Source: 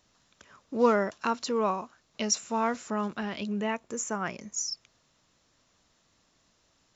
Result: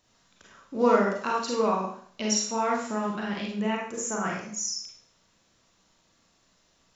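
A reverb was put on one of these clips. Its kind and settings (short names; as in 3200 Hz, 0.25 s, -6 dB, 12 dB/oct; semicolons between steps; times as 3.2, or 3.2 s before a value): Schroeder reverb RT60 0.54 s, combs from 33 ms, DRR -2.5 dB; gain -2 dB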